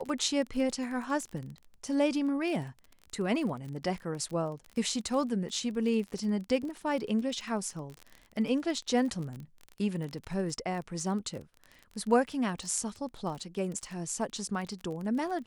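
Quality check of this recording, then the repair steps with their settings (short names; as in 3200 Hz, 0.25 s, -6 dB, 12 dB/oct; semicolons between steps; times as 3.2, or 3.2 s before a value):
crackle 27/s -36 dBFS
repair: de-click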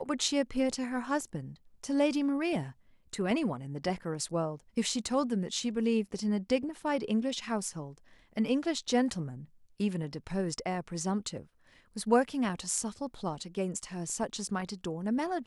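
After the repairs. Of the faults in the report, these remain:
none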